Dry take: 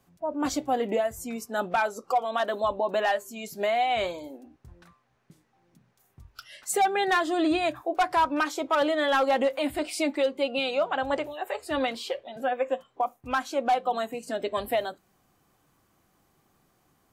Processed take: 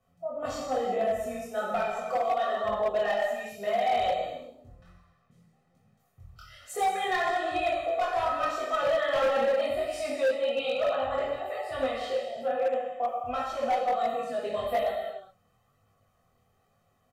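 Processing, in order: treble shelf 3.9 kHz -8.5 dB; comb 1.6 ms, depth 72%; gated-style reverb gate 420 ms falling, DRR -4 dB; chorus voices 2, 1.1 Hz, delay 22 ms, depth 3 ms; hard clipper -15.5 dBFS, distortion -15 dB; trim -5.5 dB

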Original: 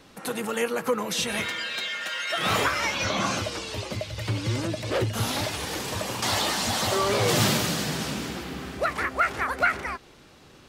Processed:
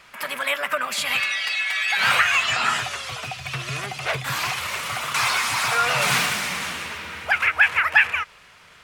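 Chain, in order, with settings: ten-band graphic EQ 250 Hz -11 dB, 1 kHz +9 dB, 2 kHz +12 dB, 8 kHz +4 dB; tape speed +21%; trim -3.5 dB

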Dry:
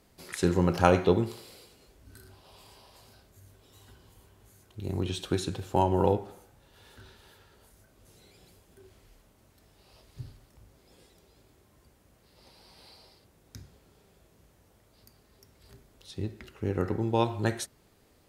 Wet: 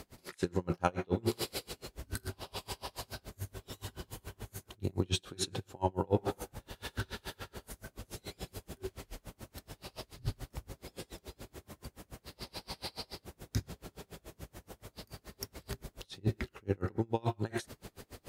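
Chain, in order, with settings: reverse; compression 5:1, threshold -43 dBFS, peak gain reduction 25 dB; reverse; logarithmic tremolo 7 Hz, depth 33 dB; trim +18 dB

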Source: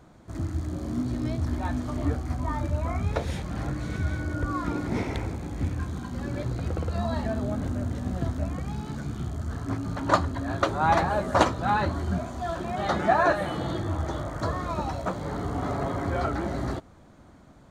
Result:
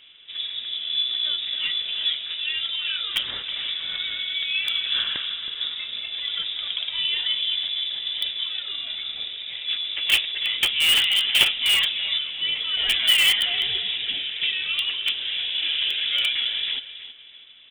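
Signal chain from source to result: high-pass 200 Hz 12 dB/octave; distance through air 110 m; band-stop 1.2 kHz, Q 14; feedback delay 321 ms, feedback 30%, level -13 dB; frequency inversion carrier 3.7 kHz; in parallel at -7 dB: integer overflow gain 18.5 dB; on the sum: trim +3 dB

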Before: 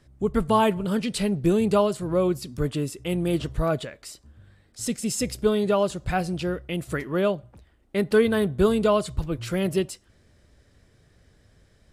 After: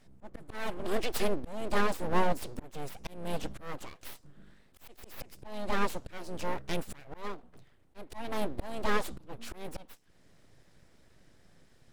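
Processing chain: full-wave rectifier; slow attack 500 ms; harmony voices +3 st -15 dB; trim -1.5 dB

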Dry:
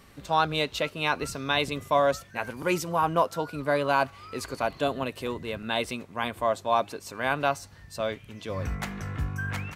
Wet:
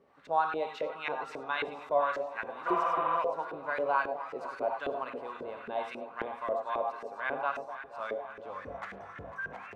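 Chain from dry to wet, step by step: on a send: echo whose repeats swap between lows and highs 249 ms, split 930 Hz, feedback 82%, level -11.5 dB; on the sum: gated-style reverb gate 120 ms rising, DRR 5 dB; LFO band-pass saw up 3.7 Hz 400–1900 Hz; spectral replace 2.70–3.14 s, 440–3900 Hz after; trim -1 dB

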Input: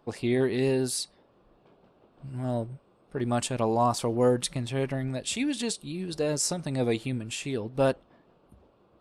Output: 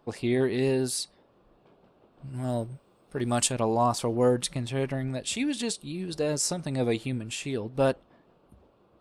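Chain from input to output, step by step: 2.33–3.51 s: treble shelf 5.1 kHz -> 3.3 kHz +10 dB

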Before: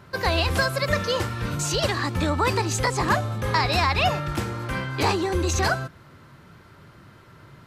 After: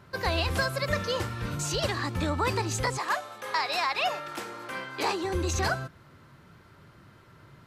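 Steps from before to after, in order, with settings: 2.97–5.23 s: high-pass 700 Hz -> 290 Hz 12 dB/octave; trim -5 dB

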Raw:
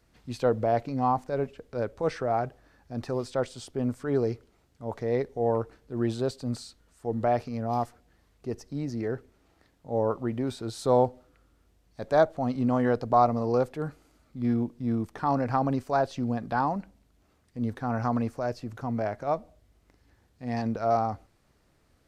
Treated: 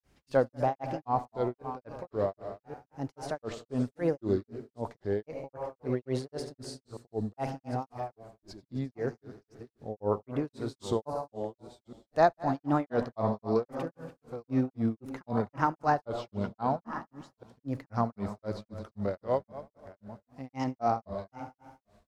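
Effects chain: chunks repeated in reverse 697 ms, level -12.5 dB; multi-head delay 82 ms, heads all three, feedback 45%, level -17 dB; granulator 233 ms, grains 3.8 per s, pitch spread up and down by 3 st

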